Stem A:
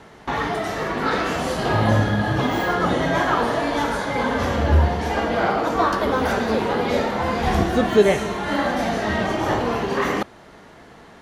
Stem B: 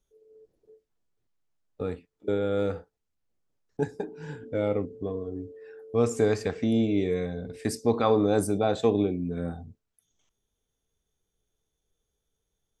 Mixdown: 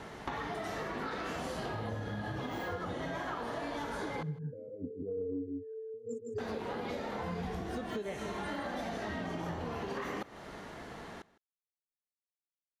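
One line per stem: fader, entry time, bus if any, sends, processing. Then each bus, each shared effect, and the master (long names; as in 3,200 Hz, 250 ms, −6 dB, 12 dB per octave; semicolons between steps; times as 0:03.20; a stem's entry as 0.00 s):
−1.0 dB, 0.00 s, muted 0:04.23–0:06.38, no send, echo send −21 dB, downward compressor 2.5 to 1, threshold −32 dBFS, peak gain reduction 15 dB
−2.0 dB, 0.00 s, no send, echo send −5.5 dB, compressor whose output falls as the input rises −35 dBFS, ratio −1; every bin expanded away from the loudest bin 2.5 to 1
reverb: not used
echo: single-tap delay 158 ms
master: downward compressor 6 to 1, threshold −35 dBFS, peak gain reduction 12.5 dB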